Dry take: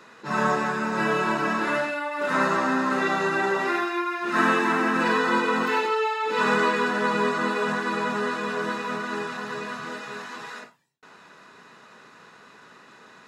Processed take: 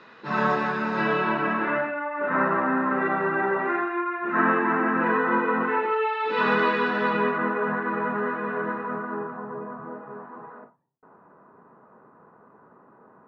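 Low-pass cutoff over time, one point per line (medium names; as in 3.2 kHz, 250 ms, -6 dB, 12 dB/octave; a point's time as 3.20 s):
low-pass 24 dB/octave
0.98 s 4.4 kHz
1.96 s 2 kHz
5.79 s 2 kHz
6.26 s 3.8 kHz
7.04 s 3.8 kHz
7.51 s 1.9 kHz
8.58 s 1.9 kHz
9.51 s 1.1 kHz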